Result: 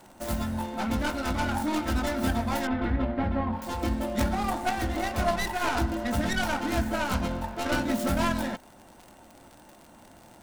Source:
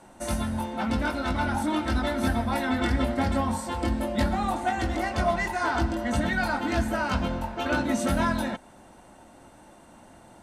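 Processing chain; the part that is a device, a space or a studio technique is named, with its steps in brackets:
record under a worn stylus (stylus tracing distortion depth 0.32 ms; surface crackle 77 per second −37 dBFS; white noise bed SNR 41 dB)
0:02.67–0:03.62: high-frequency loss of the air 450 metres
level −1.5 dB

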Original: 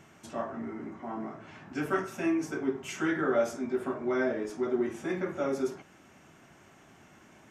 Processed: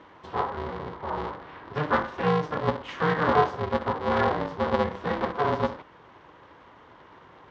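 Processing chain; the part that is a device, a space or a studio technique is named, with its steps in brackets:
ring modulator pedal into a guitar cabinet (ring modulator with a square carrier 150 Hz; loudspeaker in its box 76–3,800 Hz, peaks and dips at 220 Hz −4 dB, 1,000 Hz +9 dB, 2,500 Hz −7 dB)
level +4.5 dB

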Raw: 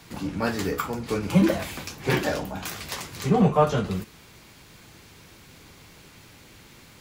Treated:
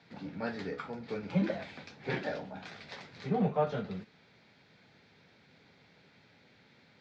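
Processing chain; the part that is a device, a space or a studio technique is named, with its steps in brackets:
kitchen radio (loudspeaker in its box 160–4,100 Hz, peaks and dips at 330 Hz −8 dB, 1,100 Hz −10 dB, 2,900 Hz −8 dB)
level −8 dB

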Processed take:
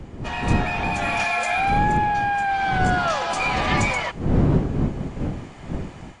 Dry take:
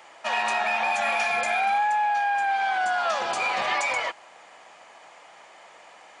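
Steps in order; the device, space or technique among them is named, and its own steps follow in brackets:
smartphone video outdoors (wind on the microphone 230 Hz −26 dBFS; automatic gain control gain up to 8 dB; level −4.5 dB; AAC 48 kbit/s 22,050 Hz)

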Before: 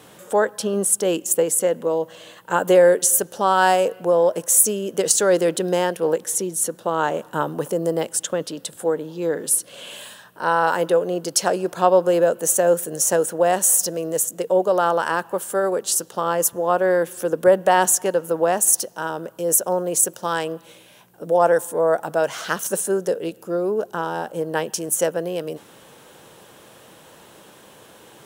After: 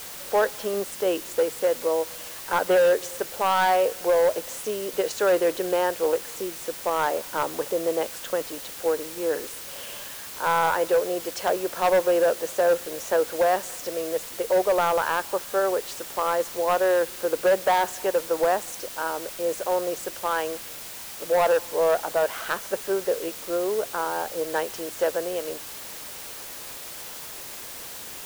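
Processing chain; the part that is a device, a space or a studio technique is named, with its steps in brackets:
aircraft radio (band-pass filter 390–2,600 Hz; hard clipping −14.5 dBFS, distortion −13 dB; white noise bed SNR 13 dB)
level −1 dB

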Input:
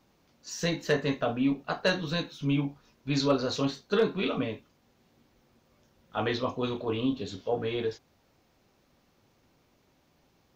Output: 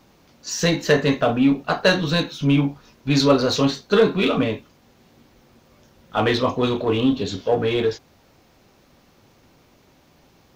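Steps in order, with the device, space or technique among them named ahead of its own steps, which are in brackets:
parallel distortion (in parallel at −8 dB: hard clipping −33 dBFS, distortion −5 dB)
on the sum: level +8.5 dB

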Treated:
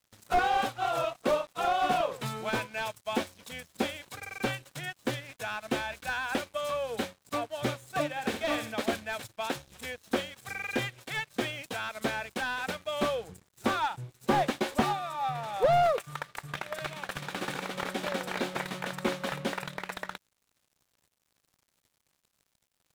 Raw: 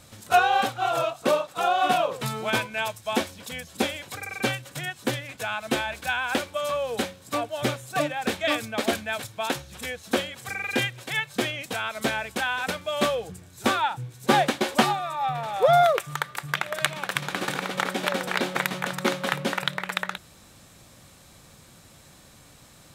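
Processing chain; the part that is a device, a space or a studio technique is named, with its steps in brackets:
0:08.09–0:08.74: flutter between parallel walls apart 11.6 metres, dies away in 0.45 s
early transistor amplifier (dead-zone distortion −45.5 dBFS; slew-rate limiting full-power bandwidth 110 Hz)
level −4 dB

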